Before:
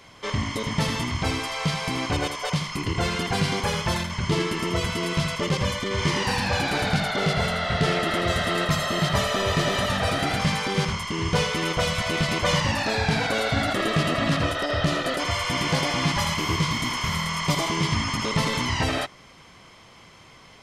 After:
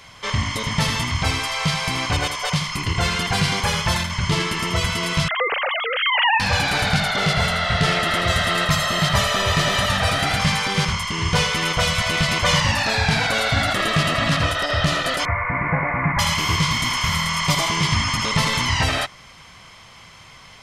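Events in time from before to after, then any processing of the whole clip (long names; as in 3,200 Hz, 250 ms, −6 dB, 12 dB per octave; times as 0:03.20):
0:05.28–0:06.40: three sine waves on the formant tracks
0:15.25–0:16.19: Butterworth low-pass 2,300 Hz 96 dB per octave
whole clip: parametric band 340 Hz −10 dB 1.7 octaves; level +6.5 dB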